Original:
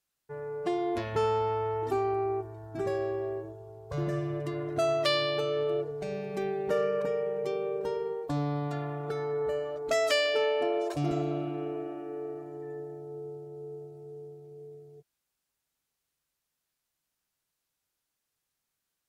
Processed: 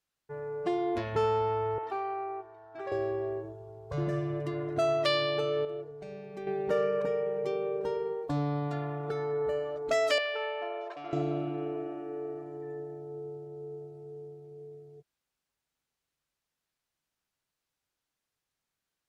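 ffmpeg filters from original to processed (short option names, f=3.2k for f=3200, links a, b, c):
-filter_complex "[0:a]asettb=1/sr,asplit=3[a][b][c];[a]atrim=end=1.784[d];[b]atrim=start=1.78:end=2.92,asetpts=PTS-STARTPTS,afade=t=in:d=0.004:c=qsin,afade=t=out:st=1.136:d=0.004:c=qsin,acrossover=split=500 4500:gain=0.0708 1 0.126[e][f][g];[e][f][g]amix=inputs=3:normalize=0[h];[c]atrim=start=2.916[i];[d][h]acrossfade=d=0.004:c1=hsin:c2=qsin[j];[j][i]acrossfade=d=0.004:c1=qsin:c2=hsin,asettb=1/sr,asplit=3[k][l][m];[k]atrim=end=10.184[n];[l]atrim=start=10.18:end=11.13,asetpts=PTS-STARTPTS,afade=t=in:d=0.004:c=qsin,afade=t=out:st=0.946:d=0.004:c=qsin,highpass=790,lowpass=2.6k[o];[m]atrim=start=11.126[p];[n][o]acrossfade=d=0.004:c1=hsin:c2=qsin[q];[q][p]acrossfade=d=0.004:c1=qsin:c2=hsin,asplit=3[r][s][t];[r]atrim=end=5.652[u];[s]atrim=start=5.648:end=6.472,asetpts=PTS-STARTPTS,volume=-8dB[v];[t]atrim=start=6.468[w];[u][v]acrossfade=d=0.004:c1=hsin:c2=hsin[x];[x][w]acrossfade=d=0.004:c1=hsin:c2=hsin,highshelf=f=7.6k:g=-10"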